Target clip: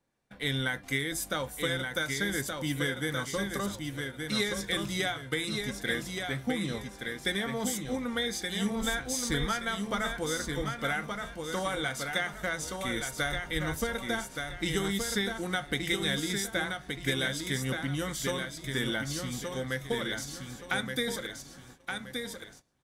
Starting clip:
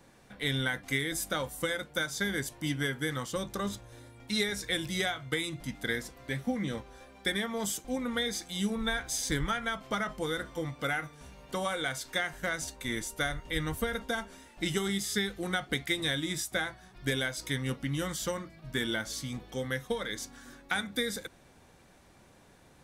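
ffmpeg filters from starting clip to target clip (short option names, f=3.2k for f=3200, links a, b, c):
-af "aecho=1:1:1173|2346|3519|4692:0.562|0.18|0.0576|0.0184,agate=range=-21dB:threshold=-51dB:ratio=16:detection=peak"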